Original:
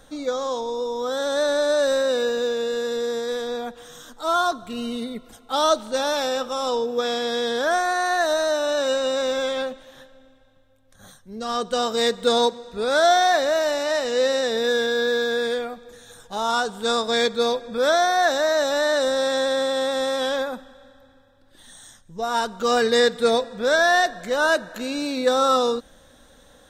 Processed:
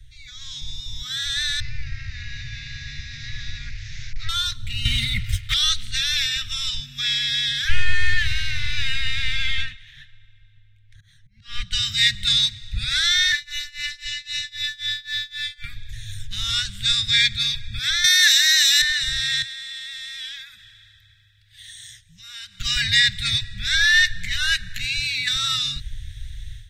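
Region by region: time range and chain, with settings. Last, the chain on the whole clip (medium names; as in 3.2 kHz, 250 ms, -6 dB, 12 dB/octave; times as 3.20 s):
1.60–4.29 s: one-bit delta coder 32 kbps, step -38.5 dBFS + peaking EQ 3.2 kHz -13 dB 0.35 oct + compression 4:1, threshold -25 dBFS
4.85–5.54 s: peaking EQ 1.2 kHz +8.5 dB 0.35 oct + waveshaping leveller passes 3 + comb of notches 330 Hz
7.68–11.72 s: slow attack 274 ms + overdrive pedal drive 20 dB, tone 1.2 kHz, clips at -12 dBFS + upward expansion, over -40 dBFS
13.32–15.64 s: tremolo 3.8 Hz, depth 95% + robot voice 293 Hz
18.04–18.82 s: high-pass 210 Hz + tilt EQ +4.5 dB/octave
19.42–22.60 s: high-pass 690 Hz 6 dB/octave + compression 2:1, threshold -42 dBFS
whole clip: Chebyshev band-stop 120–2000 Hz, order 4; tone controls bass +12 dB, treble -11 dB; level rider gain up to 14 dB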